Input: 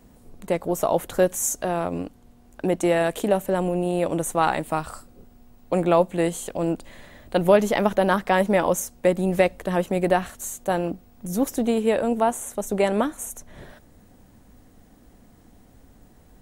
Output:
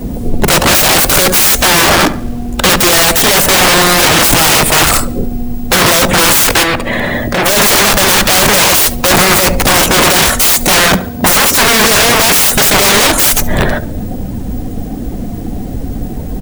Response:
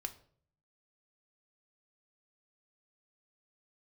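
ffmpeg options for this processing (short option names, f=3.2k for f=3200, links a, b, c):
-filter_complex "[0:a]asettb=1/sr,asplit=3[a][b][c];[a]atrim=end=4.054[d];[b]atrim=start=4.05:end=4.51,asetpts=PTS-STARTPTS,afade=t=in:d=0.004:c=qsin,afade=t=out:st=0.456:d=0.004:c=qsin,bass=f=250:g=7,treble=f=4k:g=-5[e];[c]atrim=start=4.506[f];[d][e]acrossfade=d=0.004:c1=hsin:c2=qsin[g];[g][f]acrossfade=d=0.004:c1=qsin:c2=hsin,asoftclip=type=tanh:threshold=-22.5dB,asettb=1/sr,asplit=3[h][i][j];[h]atrim=end=10.794[k];[i]atrim=start=10.79:end=11.73,asetpts=PTS-STARTPTS,afade=t=in:d=0.004:c=qsin,afade=t=out:st=0.936:d=0.004:c=qsin,highpass=73[l];[j]atrim=start=11.726[m];[k][l]acrossfade=d=0.004:c1=hsin:c2=qsin[n];[n][m]acrossfade=d=0.004:c1=qsin:c2=hsin,aeval=exprs='(mod(50.1*val(0)+1,2)-1)/50.1':c=same,acrusher=bits=9:mix=0:aa=0.000001,aecho=1:1:71|142|213|284|355|426:0.168|0.0974|0.0565|0.0328|0.019|0.011,asettb=1/sr,asplit=3[o][p][q];[o]atrim=end=6.634[r];[p]atrim=start=6.63:end=7.46,asetpts=PTS-STARTPTS,afade=t=in:d=0.004:c=qsin,afade=t=out:st=0.826:d=0.004:c=qsin,acrossover=split=100|3000[s][t][u];[s]acompressor=threshold=-57dB:ratio=4[v];[t]acompressor=threshold=-42dB:ratio=4[w];[u]acompressor=threshold=-52dB:ratio=4[x];[v][w][x]amix=inputs=3:normalize=0[y];[q]atrim=start=7.456[z];[r][y]acrossfade=d=0.004:c1=hsin:c2=qsin[aa];[aa][z]acrossfade=d=0.004:c1=qsin:c2=hsin,afftdn=nr=13:nf=-53,alimiter=level_in=34.5dB:limit=-1dB:release=50:level=0:latency=1,volume=-1dB"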